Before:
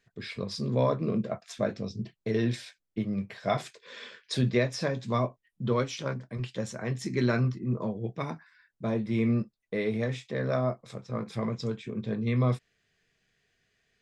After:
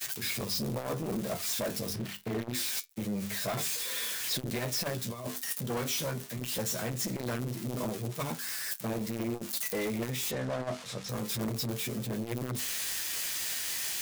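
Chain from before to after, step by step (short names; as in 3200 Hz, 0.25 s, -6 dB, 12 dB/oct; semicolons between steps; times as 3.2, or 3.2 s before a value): switching spikes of -22 dBFS; notches 50/100/150/200/250/300/350/400/450 Hz; expander -31 dBFS; 1.93–2.55 tone controls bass +3 dB, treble -14 dB; 5.01–5.7 negative-ratio compressor -33 dBFS, ratio -0.5; limiter -21 dBFS, peak gain reduction 7 dB; flange 0.25 Hz, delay 7.7 ms, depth 5.4 ms, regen +61%; overloaded stage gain 35 dB; 10.31–11.09 air absorption 75 m; core saturation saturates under 190 Hz; gain +7.5 dB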